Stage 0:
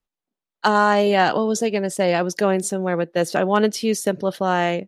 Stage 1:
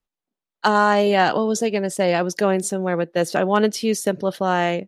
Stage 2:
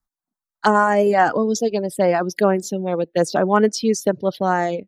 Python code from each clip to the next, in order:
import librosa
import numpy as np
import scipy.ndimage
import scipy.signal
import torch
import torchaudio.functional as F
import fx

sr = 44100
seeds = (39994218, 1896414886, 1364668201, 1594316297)

y1 = x
y2 = fx.dynamic_eq(y1, sr, hz=2800.0, q=5.3, threshold_db=-44.0, ratio=4.0, max_db=-5)
y2 = fx.dereverb_blind(y2, sr, rt60_s=1.2)
y2 = fx.env_phaser(y2, sr, low_hz=470.0, high_hz=3900.0, full_db=-15.5)
y2 = y2 * 10.0 ** (3.5 / 20.0)